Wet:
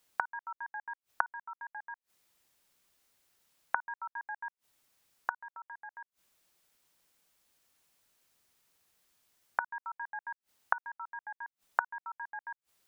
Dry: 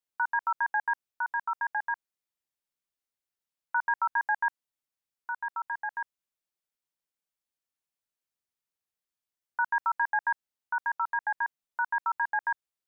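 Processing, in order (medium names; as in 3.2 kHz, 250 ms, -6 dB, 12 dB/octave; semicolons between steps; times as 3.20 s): inverted gate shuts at -36 dBFS, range -31 dB; trim +18 dB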